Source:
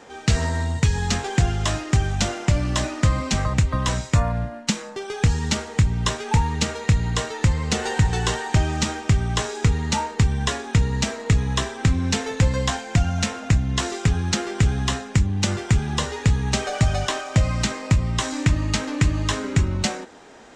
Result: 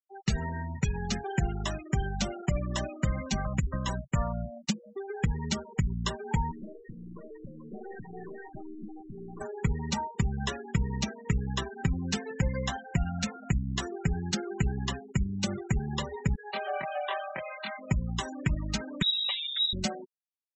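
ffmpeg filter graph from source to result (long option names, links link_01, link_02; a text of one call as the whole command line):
ffmpeg -i in.wav -filter_complex "[0:a]asettb=1/sr,asplit=3[link_01][link_02][link_03];[link_01]atrim=end=6.514[link_04];[link_02]atrim=start=6.51:end=9.41,asetpts=PTS-STARTPTS,afade=type=in:duration=0.004:curve=qsin,afade=type=out:start_time=2.896:duration=0.004:curve=qsin,highpass=frequency=150:width=0.5412,highpass=frequency=150:width=1.3066,equalizer=frequency=150:width_type=q:width=4:gain=-6,equalizer=frequency=310:width_type=q:width=4:gain=9,equalizer=frequency=900:width_type=q:width=4:gain=-7,lowpass=frequency=2200:width=0.5412,lowpass=frequency=2200:width=1.3066,aeval=exprs='(tanh(31.6*val(0)+0.45)-tanh(0.45))/31.6':channel_layout=same[link_05];[link_03]atrim=start=9.406[link_06];[link_04][link_05]acrossfade=duration=0.004:curve1=hsin:curve2=qsin[link_07];[link_07][link_06]acrossfade=duration=0.004:curve1=qsin:curve2=hsin,asettb=1/sr,asplit=3[link_08][link_09][link_10];[link_08]atrim=end=16.354[link_11];[link_09]atrim=start=16.35:end=17.79,asetpts=PTS-STARTPTS,afade=type=in:duration=0.004:curve=qsin,afade=type=out:start_time=1.436:duration=0.004:curve=qsin,highpass=540,lowpass=3300,asplit=2[link_12][link_13];[link_13]adelay=24,volume=-2dB[link_14];[link_12][link_14]amix=inputs=2:normalize=0,atrim=end_sample=63504[link_15];[link_10]atrim=start=17.786[link_16];[link_11][link_15]acrossfade=duration=0.004:curve1=hsin:curve2=qsin[link_17];[link_17][link_16]acrossfade=duration=0.004:curve1=qsin:curve2=hsin,asettb=1/sr,asplit=3[link_18][link_19][link_20];[link_18]atrim=end=19.024[link_21];[link_19]atrim=start=19.02:end=19.73,asetpts=PTS-STARTPTS,afade=type=in:duration=0.004:curve=qsin,afade=type=out:start_time=0.706:duration=0.004:curve=qsin,bandreject=frequency=364:width_type=h:width=4,bandreject=frequency=728:width_type=h:width=4,bandreject=frequency=1092:width_type=h:width=4,bandreject=frequency=1456:width_type=h:width=4,bandreject=frequency=1820:width_type=h:width=4,bandreject=frequency=2184:width_type=h:width=4,bandreject=frequency=2548:width_type=h:width=4,bandreject=frequency=2912:width_type=h:width=4,bandreject=frequency=3276:width_type=h:width=4,bandreject=frequency=3640:width_type=h:width=4,bandreject=frequency=4004:width_type=h:width=4,bandreject=frequency=4368:width_type=h:width=4,bandreject=frequency=4732:width_type=h:width=4,bandreject=frequency=5096:width_type=h:width=4,bandreject=frequency=5460:width_type=h:width=4,bandreject=frequency=5824:width_type=h:width=4,bandreject=frequency=6188:width_type=h:width=4,bandreject=frequency=6552:width_type=h:width=4,bandreject=frequency=6916:width_type=h:width=4,bandreject=frequency=7280:width_type=h:width=4,bandreject=frequency=7644:width_type=h:width=4,bandreject=frequency=8008:width_type=h:width=4,bandreject=frequency=8372:width_type=h:width=4,bandreject=frequency=8736:width_type=h:width=4,bandreject=frequency=9100:width_type=h:width=4,bandreject=frequency=9464:width_type=h:width=4,bandreject=frequency=9828:width_type=h:width=4,bandreject=frequency=10192:width_type=h:width=4,bandreject=frequency=10556:width_type=h:width=4,bandreject=frequency=10920:width_type=h:width=4,bandreject=frequency=11284:width_type=h:width=4,bandreject=frequency=11648:width_type=h:width=4,bandreject=frequency=12012:width_type=h:width=4,bandreject=frequency=12376:width_type=h:width=4,aeval=exprs='0.178*(abs(mod(val(0)/0.178+3,4)-2)-1)':channel_layout=same,lowpass=frequency=3300:width_type=q:width=0.5098,lowpass=frequency=3300:width_type=q:width=0.6013,lowpass=frequency=3300:width_type=q:width=0.9,lowpass=frequency=3300:width_type=q:width=2.563,afreqshift=-3900[link_22];[link_20]atrim=start=19.726[link_23];[link_21][link_22]acrossfade=duration=0.004:curve1=hsin:curve2=qsin[link_24];[link_24][link_23]acrossfade=duration=0.004:curve1=qsin:curve2=hsin,afftfilt=real='re*gte(hypot(re,im),0.0708)':imag='im*gte(hypot(re,im),0.0708)':win_size=1024:overlap=0.75,aecho=1:1:5.2:0.51,volume=-8.5dB" out.wav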